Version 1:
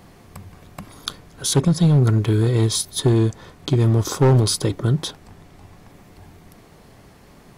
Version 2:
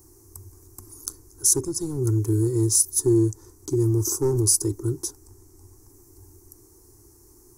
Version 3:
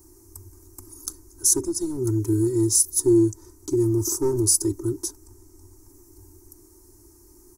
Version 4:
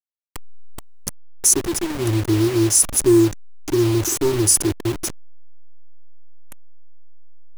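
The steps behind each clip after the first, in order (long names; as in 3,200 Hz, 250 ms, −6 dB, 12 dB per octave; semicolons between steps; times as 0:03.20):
drawn EQ curve 110 Hz 0 dB, 180 Hz −25 dB, 350 Hz +7 dB, 610 Hz −24 dB, 890 Hz −8 dB, 3,400 Hz −27 dB, 5,800 Hz +8 dB, 13,000 Hz +12 dB; level −4 dB
comb filter 3.2 ms, depth 70%; level −1.5 dB
hold until the input has moved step −26 dBFS; level +4 dB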